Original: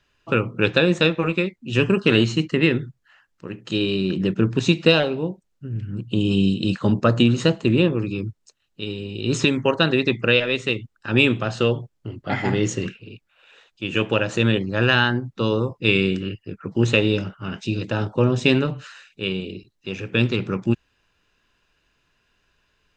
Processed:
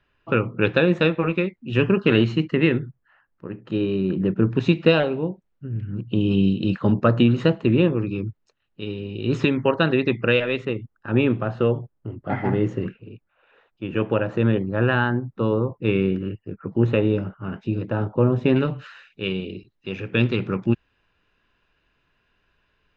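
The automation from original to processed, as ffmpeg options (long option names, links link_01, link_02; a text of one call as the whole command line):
ffmpeg -i in.wav -af "asetnsamples=nb_out_samples=441:pad=0,asendcmd='2.79 lowpass f 1500;4.5 lowpass f 2400;10.65 lowpass f 1400;18.56 lowpass f 3100',lowpass=2500" out.wav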